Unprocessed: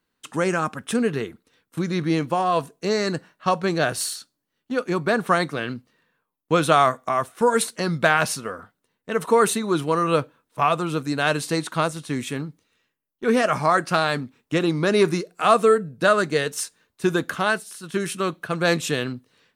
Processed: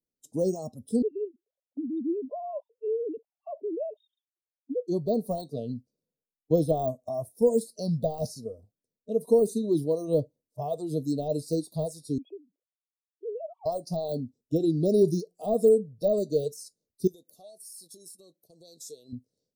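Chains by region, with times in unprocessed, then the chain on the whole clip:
1.02–4.88 s: formants replaced by sine waves + compression 2.5:1, threshold -26 dBFS
12.18–13.66 s: formants replaced by sine waves + high-pass 360 Hz 24 dB/octave + compression 16:1, threshold -28 dBFS
17.07–19.13 s: tone controls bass -11 dB, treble +5 dB + compression 4:1, threshold -35 dBFS + gate -44 dBFS, range -8 dB
whole clip: de-esser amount 75%; spectral noise reduction 14 dB; elliptic band-stop 600–5000 Hz, stop band 80 dB; trim -1 dB

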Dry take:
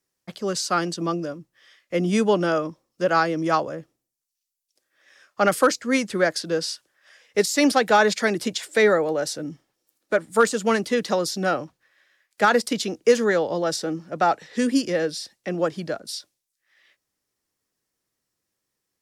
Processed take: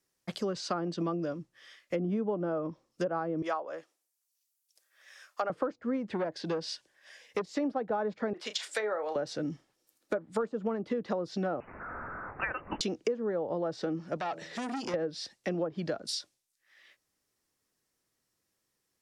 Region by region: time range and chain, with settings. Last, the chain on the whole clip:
3.42–5.50 s: high-pass 630 Hz + treble shelf 9.4 kHz +8.5 dB
6.09–7.53 s: peaking EQ 1.3 kHz -12 dB 0.2 oct + transformer saturation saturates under 1.3 kHz
8.33–9.16 s: high-pass 780 Hz + doubling 33 ms -12 dB
11.60–12.81 s: zero-crossing glitches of -20.5 dBFS + high-pass 1.5 kHz + frequency inversion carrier 3.2 kHz
14.17–14.94 s: de-hum 81.96 Hz, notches 8 + compression 3:1, threshold -28 dBFS + transformer saturation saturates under 1.5 kHz
whole clip: low-pass that closes with the level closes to 1.1 kHz, closed at -18.5 dBFS; dynamic bell 1.9 kHz, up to -5 dB, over -40 dBFS, Q 1.3; compression 6:1, threshold -29 dBFS

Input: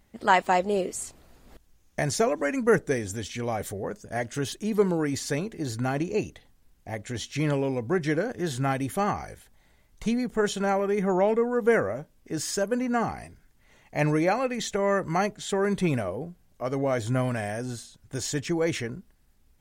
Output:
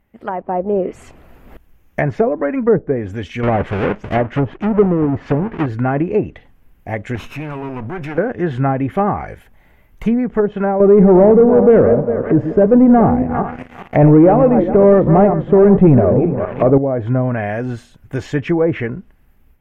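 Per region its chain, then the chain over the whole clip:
3.43–5.66 s: square wave that keeps the level + low-pass 8.7 kHz
7.15–8.18 s: comb filter that takes the minimum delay 0.78 ms + transient shaper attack -8 dB, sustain +5 dB + compression, threshold -33 dBFS
10.80–16.78 s: backward echo that repeats 202 ms, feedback 48%, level -10 dB + waveshaping leveller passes 3
whole clip: low-pass that closes with the level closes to 650 Hz, closed at -20 dBFS; high-order bell 6 kHz -15 dB; level rider gain up to 11.5 dB

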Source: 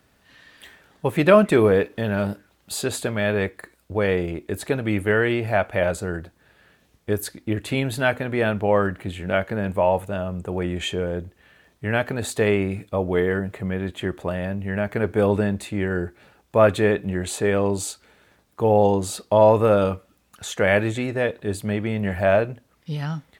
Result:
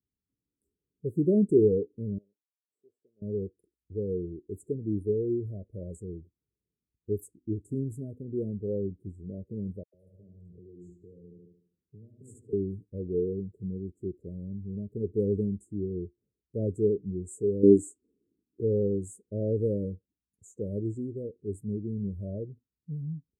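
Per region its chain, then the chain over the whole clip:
2.18–3.22 s: comb filter that takes the minimum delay 0.49 ms + vowel filter a
9.83–12.53 s: feedback delay 74 ms, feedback 54%, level -6 dB + compression 5:1, threshold -32 dBFS + phase dispersion lows, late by 109 ms, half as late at 1.5 kHz
17.63–18.61 s: peaking EQ 290 Hz +13.5 dB 1.4 oct + de-esser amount 30%
whole clip: elliptic band-stop 420–7500 Hz, stop band 40 dB; dynamic bell 7.2 kHz, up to +3 dB, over -48 dBFS, Q 1.2; spectral contrast expander 1.5:1; trim -1.5 dB

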